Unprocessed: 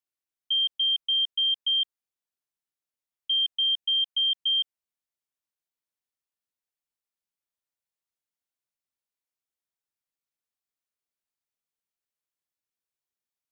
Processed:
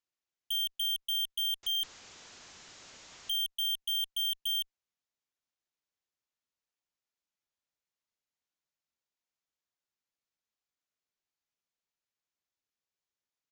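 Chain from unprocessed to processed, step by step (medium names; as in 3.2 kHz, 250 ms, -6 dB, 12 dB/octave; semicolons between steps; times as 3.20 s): 1.63–3.34 s: jump at every zero crossing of -40 dBFS; resampled via 16 kHz; Chebyshev shaper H 2 -23 dB, 3 -18 dB, 7 -8 dB, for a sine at -19.5 dBFS; trim -6.5 dB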